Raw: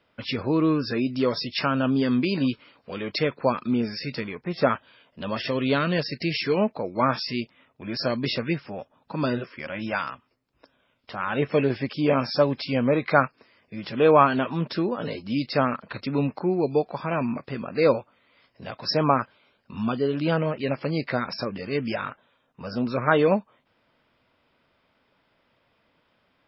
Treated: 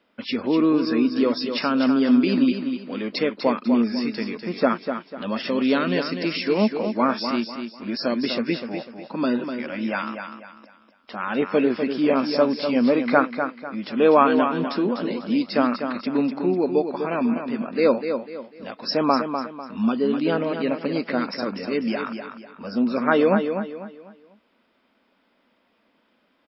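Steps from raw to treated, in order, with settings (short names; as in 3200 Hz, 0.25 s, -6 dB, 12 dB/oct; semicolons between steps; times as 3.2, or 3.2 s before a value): resonant low shelf 170 Hz -8.5 dB, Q 3; feedback echo 0.248 s, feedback 34%, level -7.5 dB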